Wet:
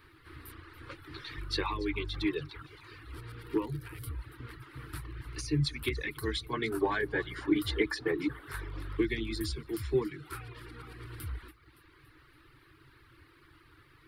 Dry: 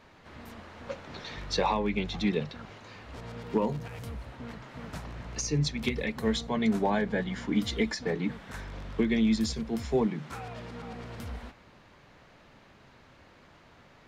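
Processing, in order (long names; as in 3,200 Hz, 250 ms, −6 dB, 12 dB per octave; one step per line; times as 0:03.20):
parametric band 670 Hz −12.5 dB 1.6 octaves, from 0:06.53 −3 dB, from 0:08.97 −12 dB
echo with a time of its own for lows and highs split 560 Hz, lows 183 ms, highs 283 ms, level −15 dB
reverb reduction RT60 0.84 s
drawn EQ curve 140 Hz 0 dB, 200 Hz −27 dB, 320 Hz +9 dB, 630 Hz −12 dB, 1,200 Hz +4 dB, 1,700 Hz +1 dB, 2,600 Hz −3 dB, 4,600 Hz −3 dB, 6,600 Hz −16 dB, 9,500 Hz +7 dB
level +2.5 dB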